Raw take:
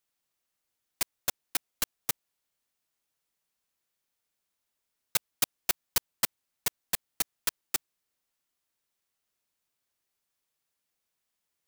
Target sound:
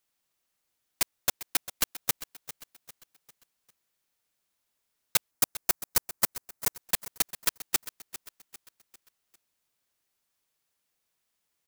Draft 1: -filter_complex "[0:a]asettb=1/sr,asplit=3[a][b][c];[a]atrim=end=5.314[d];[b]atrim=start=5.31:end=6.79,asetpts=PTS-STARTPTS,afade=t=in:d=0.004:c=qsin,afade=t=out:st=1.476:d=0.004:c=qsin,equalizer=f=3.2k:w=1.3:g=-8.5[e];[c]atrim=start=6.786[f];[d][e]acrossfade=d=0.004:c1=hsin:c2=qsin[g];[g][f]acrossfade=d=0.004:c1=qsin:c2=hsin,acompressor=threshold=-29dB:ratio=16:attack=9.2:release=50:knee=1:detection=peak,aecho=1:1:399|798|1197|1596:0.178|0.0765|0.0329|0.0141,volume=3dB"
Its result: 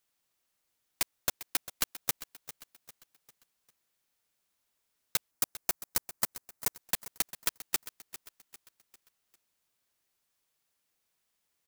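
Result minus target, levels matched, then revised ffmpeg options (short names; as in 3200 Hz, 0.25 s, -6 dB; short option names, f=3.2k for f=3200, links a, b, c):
compressor: peak gain reduction +9 dB
-filter_complex "[0:a]asettb=1/sr,asplit=3[a][b][c];[a]atrim=end=5.314[d];[b]atrim=start=5.31:end=6.79,asetpts=PTS-STARTPTS,afade=t=in:d=0.004:c=qsin,afade=t=out:st=1.476:d=0.004:c=qsin,equalizer=f=3.2k:w=1.3:g=-8.5[e];[c]atrim=start=6.786[f];[d][e]acrossfade=d=0.004:c1=hsin:c2=qsin[g];[g][f]acrossfade=d=0.004:c1=qsin:c2=hsin,aecho=1:1:399|798|1197|1596:0.178|0.0765|0.0329|0.0141,volume=3dB"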